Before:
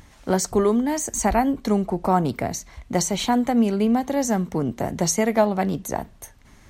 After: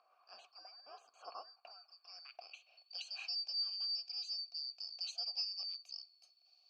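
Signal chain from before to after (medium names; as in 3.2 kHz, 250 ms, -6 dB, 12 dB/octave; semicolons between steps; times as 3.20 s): four frequency bands reordered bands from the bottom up 2341; band-pass sweep 1.2 kHz -> 4.5 kHz, 1.71–3.24 s; vowel filter a; trim +4 dB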